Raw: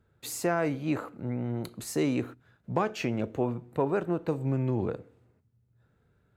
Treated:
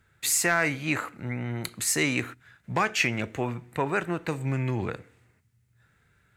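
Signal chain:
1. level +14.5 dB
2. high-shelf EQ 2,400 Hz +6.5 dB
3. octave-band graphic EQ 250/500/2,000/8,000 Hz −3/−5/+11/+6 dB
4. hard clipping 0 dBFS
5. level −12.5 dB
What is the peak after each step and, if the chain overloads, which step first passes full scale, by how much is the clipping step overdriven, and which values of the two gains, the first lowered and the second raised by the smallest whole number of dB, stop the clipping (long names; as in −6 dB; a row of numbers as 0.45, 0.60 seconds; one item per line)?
+1.5, +2.0, +4.0, 0.0, −12.5 dBFS
step 1, 4.0 dB
step 1 +10.5 dB, step 5 −8.5 dB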